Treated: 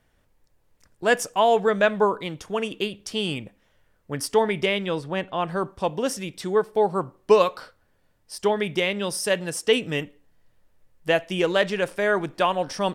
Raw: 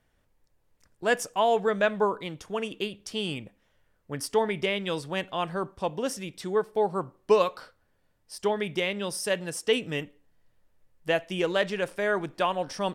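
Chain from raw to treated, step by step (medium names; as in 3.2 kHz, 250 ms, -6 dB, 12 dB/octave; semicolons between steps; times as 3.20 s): 4.86–5.49 s: treble shelf 3.3 kHz -11.5 dB; trim +4.5 dB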